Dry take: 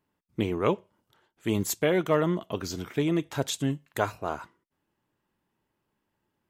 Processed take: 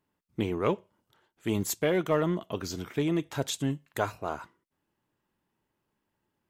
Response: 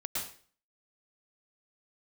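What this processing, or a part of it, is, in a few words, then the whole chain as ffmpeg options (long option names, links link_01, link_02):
parallel distortion: -filter_complex "[0:a]asplit=2[link_01][link_02];[link_02]asoftclip=type=hard:threshold=-23dB,volume=-11.5dB[link_03];[link_01][link_03]amix=inputs=2:normalize=0,volume=-3.5dB"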